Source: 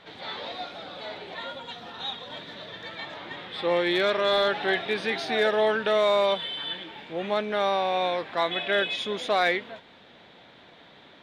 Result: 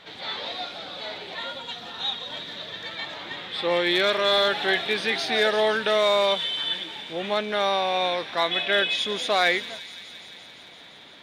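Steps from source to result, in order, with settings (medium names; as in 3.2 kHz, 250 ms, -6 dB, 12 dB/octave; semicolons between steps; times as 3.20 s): treble shelf 2.3 kHz +8 dB; on a send: feedback echo behind a high-pass 172 ms, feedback 80%, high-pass 3.8 kHz, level -10 dB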